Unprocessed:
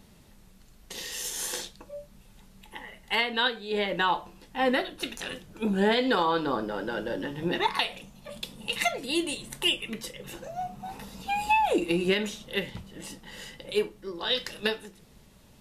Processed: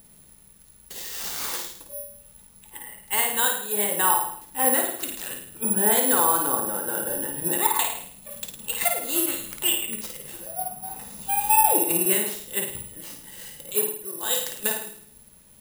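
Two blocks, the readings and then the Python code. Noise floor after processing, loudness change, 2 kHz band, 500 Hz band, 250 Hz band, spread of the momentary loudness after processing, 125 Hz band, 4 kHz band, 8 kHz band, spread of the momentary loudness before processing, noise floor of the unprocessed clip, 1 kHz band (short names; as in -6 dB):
-53 dBFS, +6.0 dB, -1.0 dB, -0.5 dB, -2.0 dB, 19 LU, -3.0 dB, -2.0 dB, +15.5 dB, 18 LU, -55 dBFS, +3.0 dB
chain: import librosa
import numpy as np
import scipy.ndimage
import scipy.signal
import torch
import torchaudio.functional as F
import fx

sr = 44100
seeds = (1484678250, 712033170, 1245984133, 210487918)

y = fx.room_flutter(x, sr, wall_m=9.2, rt60_s=0.63)
y = (np.kron(y[::4], np.eye(4)[0]) * 4)[:len(y)]
y = fx.dynamic_eq(y, sr, hz=920.0, q=0.97, threshold_db=-39.0, ratio=4.0, max_db=6)
y = F.gain(torch.from_numpy(y), -4.5).numpy()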